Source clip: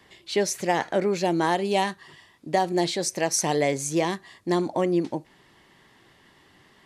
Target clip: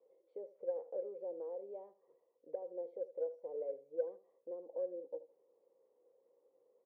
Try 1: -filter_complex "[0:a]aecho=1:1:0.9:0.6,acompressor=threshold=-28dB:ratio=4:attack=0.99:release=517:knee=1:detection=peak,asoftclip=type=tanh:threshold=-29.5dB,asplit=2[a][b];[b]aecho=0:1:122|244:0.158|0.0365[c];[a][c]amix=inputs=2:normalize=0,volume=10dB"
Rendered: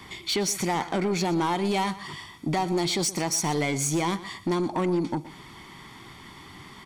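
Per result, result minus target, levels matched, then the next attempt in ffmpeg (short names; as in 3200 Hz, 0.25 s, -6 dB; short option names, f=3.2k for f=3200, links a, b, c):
echo 44 ms late; 500 Hz band -7.0 dB
-filter_complex "[0:a]aecho=1:1:0.9:0.6,acompressor=threshold=-28dB:ratio=4:attack=0.99:release=517:knee=1:detection=peak,asoftclip=type=tanh:threshold=-29.5dB,asplit=2[a][b];[b]aecho=0:1:78|156:0.158|0.0365[c];[a][c]amix=inputs=2:normalize=0,volume=10dB"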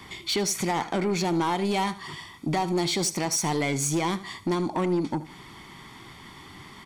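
500 Hz band -7.0 dB
-filter_complex "[0:a]aecho=1:1:0.9:0.6,acompressor=threshold=-28dB:ratio=4:attack=0.99:release=517:knee=1:detection=peak,asuperpass=centerf=510:order=4:qfactor=7.6,asoftclip=type=tanh:threshold=-29.5dB,asplit=2[a][b];[b]aecho=0:1:78|156:0.158|0.0365[c];[a][c]amix=inputs=2:normalize=0,volume=10dB"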